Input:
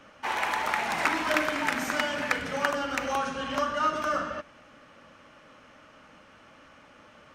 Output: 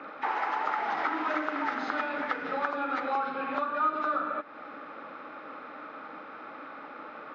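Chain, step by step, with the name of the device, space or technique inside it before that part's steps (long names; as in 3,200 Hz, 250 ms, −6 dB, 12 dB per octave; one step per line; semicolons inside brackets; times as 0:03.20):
hearing aid with frequency lowering (hearing-aid frequency compression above 1,700 Hz 1.5 to 1; downward compressor 3 to 1, threshold −43 dBFS, peak gain reduction 16 dB; loudspeaker in its box 250–5,200 Hz, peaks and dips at 300 Hz +8 dB, 440 Hz +6 dB, 810 Hz +7 dB, 1,300 Hz +9 dB, 4,300 Hz −4 dB)
level +6 dB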